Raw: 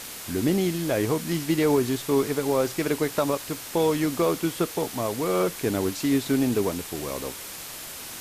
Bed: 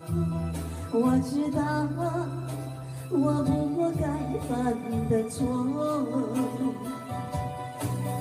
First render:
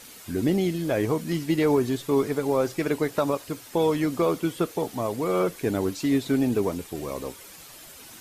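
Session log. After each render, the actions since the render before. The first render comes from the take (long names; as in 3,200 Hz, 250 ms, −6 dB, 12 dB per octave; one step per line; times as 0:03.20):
broadband denoise 10 dB, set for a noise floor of −38 dBFS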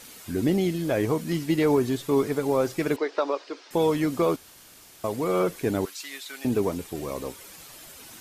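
0:02.96–0:03.71: elliptic band-pass filter 350–5,200 Hz, stop band 60 dB
0:04.36–0:05.04: fill with room tone
0:05.85–0:06.45: high-pass filter 1,400 Hz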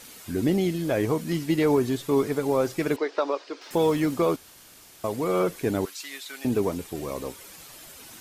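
0:03.61–0:04.14: mu-law and A-law mismatch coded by mu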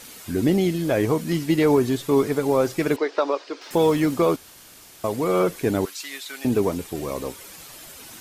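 level +3.5 dB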